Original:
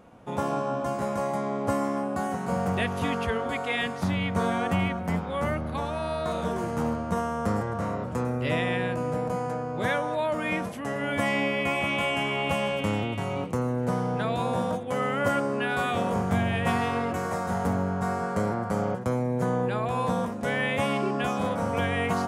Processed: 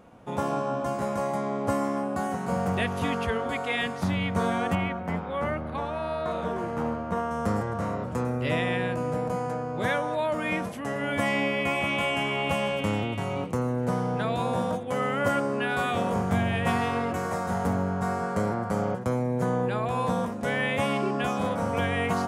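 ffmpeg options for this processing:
ffmpeg -i in.wav -filter_complex "[0:a]asettb=1/sr,asplit=3[link_01][link_02][link_03];[link_01]atrim=end=4.754[link_04];[link_02]atrim=start=4.75:end=7.31,asetpts=PTS-STARTPTS,afade=type=in:duration=0.004:curve=qsin,afade=type=out:start_time=2.556:duration=0.004:curve=qsin,bass=frequency=250:gain=-4,treble=frequency=4000:gain=-11[link_05];[link_03]atrim=start=7.306[link_06];[link_04][link_05]acrossfade=duration=0.004:curve1=hsin:curve2=qsin[link_07];[link_07][link_06]acrossfade=duration=0.004:curve1=qsin:curve2=hsin" out.wav

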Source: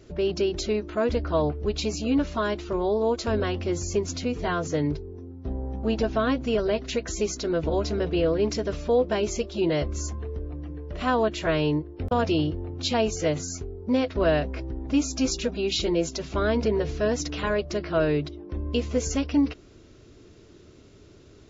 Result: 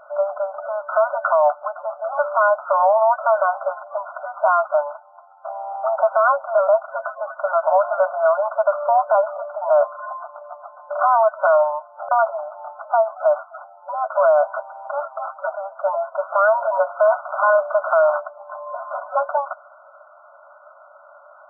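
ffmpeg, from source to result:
ffmpeg -i in.wav -filter_complex "[0:a]asettb=1/sr,asplit=3[link_01][link_02][link_03];[link_01]atrim=end=12.144[link_04];[link_02]atrim=start=12.14:end=14.06,asetpts=PTS-STARTPTS,afade=type=in:duration=0.004:curve=qsin,afade=type=out:start_time=1.916:duration=0.004:curve=qsin,acompressor=threshold=-26dB:ratio=2.5:attack=3.2:release=140:knee=1:detection=peak[link_05];[link_03]atrim=start=14.056[link_06];[link_04][link_05]acrossfade=duration=0.004:curve1=hsin:curve2=qsin[link_07];[link_07][link_06]acrossfade=duration=0.004:curve1=qsin:curve2=hsin,asettb=1/sr,asplit=3[link_08][link_09][link_10];[link_08]atrim=end=16.964[link_11];[link_09]atrim=start=16.96:end=18.2,asetpts=PTS-STARTPTS,afade=type=in:duration=0.004:curve=qsin,afade=type=out:start_time=1.236:duration=0.004:curve=qsin,acrusher=bits=3:mode=log:mix=0:aa=0.000001[link_12];[link_10]atrim=start=18.196[link_13];[link_11][link_12]acrossfade=duration=0.004:curve1=hsin:curve2=qsin[link_14];[link_14][link_13]acrossfade=duration=0.004:curve1=qsin:curve2=hsin,afftfilt=real='re*between(b*sr/4096,550,1500)':imag='im*between(b*sr/4096,550,1500)':win_size=4096:overlap=0.75,tiltshelf=frequency=720:gain=-3,alimiter=level_in=26dB:limit=-1dB:release=50:level=0:latency=1,volume=-7dB" out.wav

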